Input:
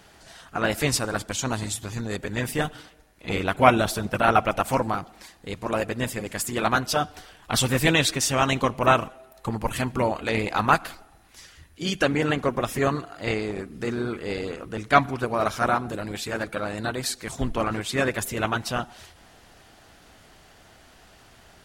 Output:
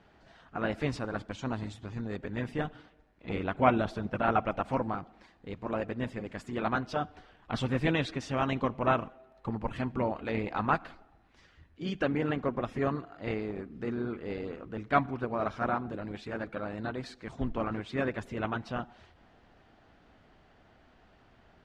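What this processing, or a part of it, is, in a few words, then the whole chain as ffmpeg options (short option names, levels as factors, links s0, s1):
phone in a pocket: -af "lowpass=3900,equalizer=f=240:t=o:w=0.73:g=3,highshelf=f=2400:g=-8.5,volume=0.447"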